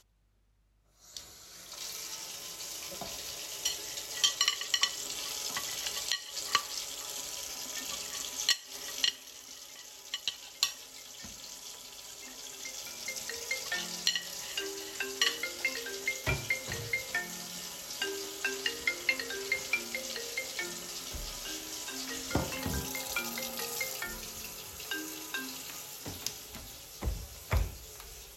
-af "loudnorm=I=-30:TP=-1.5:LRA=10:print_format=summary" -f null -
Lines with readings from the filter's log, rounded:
Input Integrated:    -34.7 LUFS
Input True Peak:     -10.1 dBTP
Input LRA:             7.7 LU
Input Threshold:     -45.0 LUFS